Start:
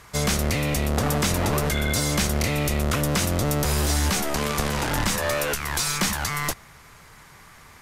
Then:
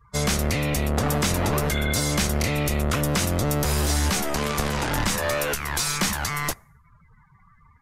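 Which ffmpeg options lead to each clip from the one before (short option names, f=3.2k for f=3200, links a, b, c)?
-af "afftdn=nr=33:nf=-42"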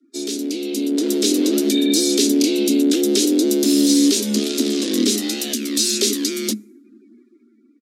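-af "dynaudnorm=f=210:g=9:m=12.5dB,firequalizer=gain_entry='entry(120,0);entry(620,-30);entry(3500,1);entry(14000,-9)':delay=0.05:min_phase=1,afreqshift=210"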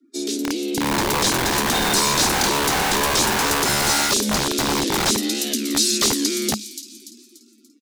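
-filter_complex "[0:a]acrossover=split=2400[a][b];[a]aeval=exprs='(mod(6.68*val(0)+1,2)-1)/6.68':c=same[c];[b]asplit=6[d][e][f][g][h][i];[e]adelay=290,afreqshift=77,volume=-9.5dB[j];[f]adelay=580,afreqshift=154,volume=-17dB[k];[g]adelay=870,afreqshift=231,volume=-24.6dB[l];[h]adelay=1160,afreqshift=308,volume=-32.1dB[m];[i]adelay=1450,afreqshift=385,volume=-39.6dB[n];[d][j][k][l][m][n]amix=inputs=6:normalize=0[o];[c][o]amix=inputs=2:normalize=0"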